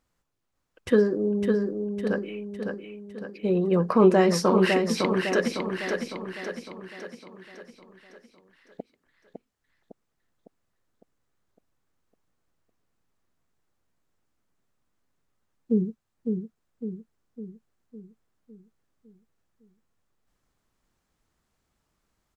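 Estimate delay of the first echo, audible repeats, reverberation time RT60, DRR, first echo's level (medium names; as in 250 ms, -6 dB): 556 ms, 6, no reverb, no reverb, -5.0 dB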